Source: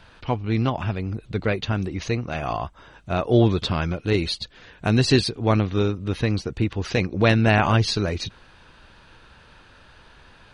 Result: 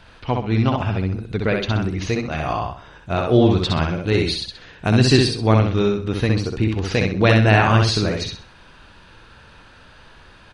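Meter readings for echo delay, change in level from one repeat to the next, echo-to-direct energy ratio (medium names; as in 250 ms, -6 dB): 64 ms, -10.0 dB, -3.0 dB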